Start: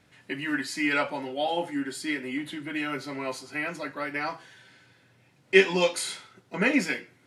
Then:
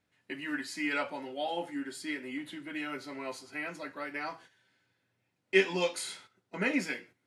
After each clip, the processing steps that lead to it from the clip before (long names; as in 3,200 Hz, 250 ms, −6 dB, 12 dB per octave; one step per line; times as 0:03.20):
noise gate −47 dBFS, range −10 dB
parametric band 140 Hz −8.5 dB 0.2 octaves
level −6.5 dB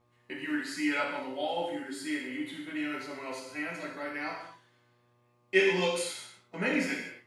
hum with harmonics 120 Hz, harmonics 10, −70 dBFS −2 dB per octave
reverb whose tail is shaped and stops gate 280 ms falling, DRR −1.5 dB
level −2 dB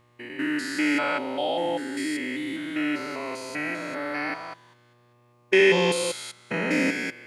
spectrum averaged block by block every 200 ms
level +8.5 dB